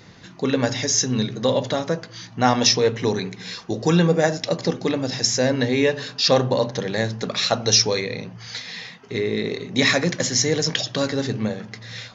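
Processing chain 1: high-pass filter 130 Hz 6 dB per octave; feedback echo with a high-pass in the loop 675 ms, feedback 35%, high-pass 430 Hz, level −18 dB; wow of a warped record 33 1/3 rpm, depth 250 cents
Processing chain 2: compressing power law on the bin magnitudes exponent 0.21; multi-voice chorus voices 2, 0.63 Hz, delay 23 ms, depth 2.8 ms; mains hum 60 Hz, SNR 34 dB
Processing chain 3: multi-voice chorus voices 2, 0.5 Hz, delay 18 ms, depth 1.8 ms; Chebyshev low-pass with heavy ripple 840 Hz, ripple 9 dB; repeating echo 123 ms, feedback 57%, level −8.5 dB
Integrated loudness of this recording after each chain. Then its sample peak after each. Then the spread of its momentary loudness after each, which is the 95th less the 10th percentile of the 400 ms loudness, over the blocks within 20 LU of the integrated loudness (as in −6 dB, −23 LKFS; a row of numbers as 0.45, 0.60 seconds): −21.5, −22.5, −30.0 LKFS; −1.5, −3.5, −11.0 dBFS; 13, 14, 10 LU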